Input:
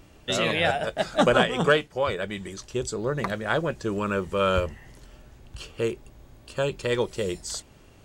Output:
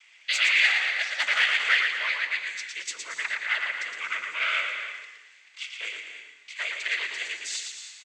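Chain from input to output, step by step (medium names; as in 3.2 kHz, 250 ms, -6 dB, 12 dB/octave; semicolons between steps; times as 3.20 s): noise-vocoded speech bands 16; saturation -16.5 dBFS, distortion -14 dB; resonant high-pass 2.1 kHz, resonance Q 3.9; on a send: frequency-shifting echo 114 ms, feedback 39%, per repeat -47 Hz, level -5 dB; on the sum: gated-style reverb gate 340 ms rising, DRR 9 dB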